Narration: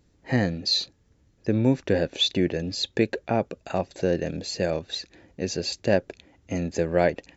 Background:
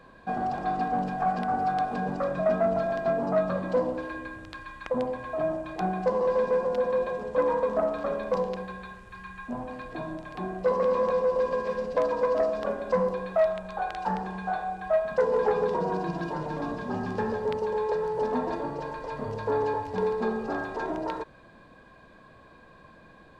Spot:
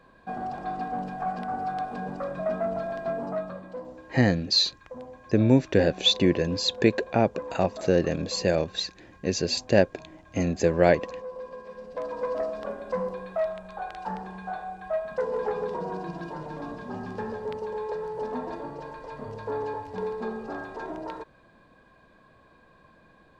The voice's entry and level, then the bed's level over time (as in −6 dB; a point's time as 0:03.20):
3.85 s, +2.0 dB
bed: 0:03.24 −4 dB
0:03.73 −13 dB
0:11.69 −13 dB
0:12.26 −4.5 dB